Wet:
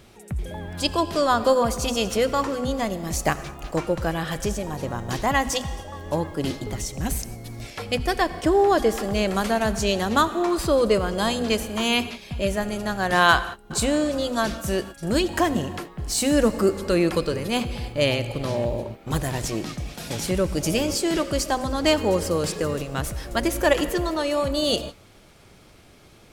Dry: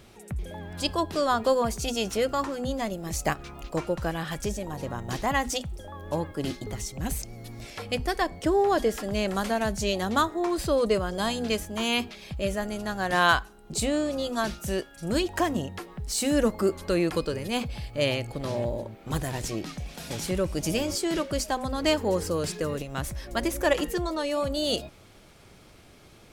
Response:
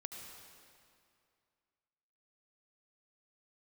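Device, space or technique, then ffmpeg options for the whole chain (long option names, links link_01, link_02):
keyed gated reverb: -filter_complex "[0:a]asplit=3[link_01][link_02][link_03];[1:a]atrim=start_sample=2205[link_04];[link_02][link_04]afir=irnorm=-1:irlink=0[link_05];[link_03]apad=whole_len=1160841[link_06];[link_05][link_06]sidechaingate=range=-33dB:threshold=-40dB:ratio=16:detection=peak,volume=-4dB[link_07];[link_01][link_07]amix=inputs=2:normalize=0,volume=1.5dB"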